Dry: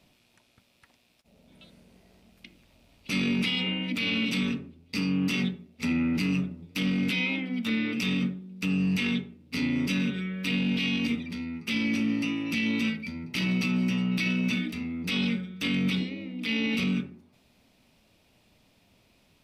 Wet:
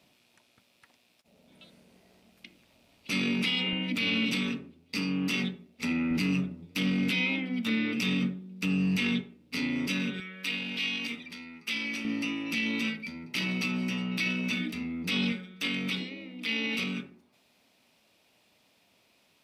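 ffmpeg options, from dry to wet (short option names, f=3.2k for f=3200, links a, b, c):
-af "asetnsamples=n=441:p=0,asendcmd='3.73 highpass f 92;4.35 highpass f 250;6.11 highpass f 110;9.21 highpass f 290;10.2 highpass f 980;12.05 highpass f 330;14.6 highpass f 150;15.32 highpass f 470',highpass=f=210:p=1"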